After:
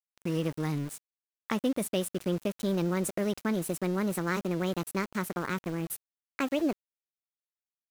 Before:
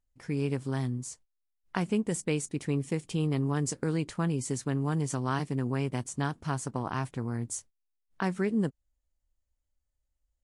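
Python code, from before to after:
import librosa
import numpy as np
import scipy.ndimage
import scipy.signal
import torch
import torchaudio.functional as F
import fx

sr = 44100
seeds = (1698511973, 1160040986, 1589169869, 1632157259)

y = fx.speed_glide(x, sr, from_pct=113, to_pct=151)
y = fx.vibrato(y, sr, rate_hz=13.0, depth_cents=19.0)
y = np.where(np.abs(y) >= 10.0 ** (-38.5 / 20.0), y, 0.0)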